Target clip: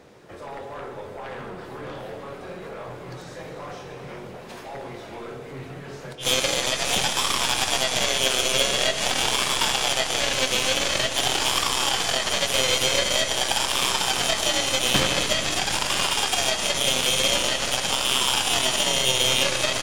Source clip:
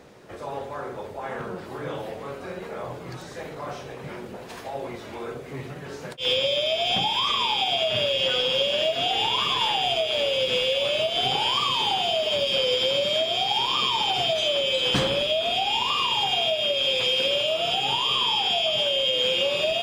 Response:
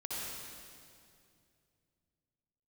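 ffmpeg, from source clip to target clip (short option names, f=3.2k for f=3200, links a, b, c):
-filter_complex "[0:a]aeval=exprs='0.299*(cos(1*acos(clip(val(0)/0.299,-1,1)))-cos(1*PI/2))+0.0668*(cos(2*acos(clip(val(0)/0.299,-1,1)))-cos(2*PI/2))+0.075*(cos(7*acos(clip(val(0)/0.299,-1,1)))-cos(7*PI/2))':c=same,asplit=2[a][b];[b]adelay=23,volume=-13dB[c];[a][c]amix=inputs=2:normalize=0,asplit=2[d][e];[1:a]atrim=start_sample=2205,asetrate=24255,aresample=44100[f];[e][f]afir=irnorm=-1:irlink=0,volume=-11.5dB[g];[d][g]amix=inputs=2:normalize=0"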